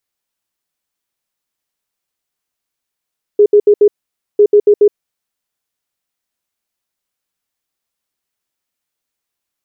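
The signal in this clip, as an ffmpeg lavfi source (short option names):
-f lavfi -i "aevalsrc='0.668*sin(2*PI*414*t)*clip(min(mod(mod(t,1),0.14),0.07-mod(mod(t,1),0.14))/0.005,0,1)*lt(mod(t,1),0.56)':d=2:s=44100"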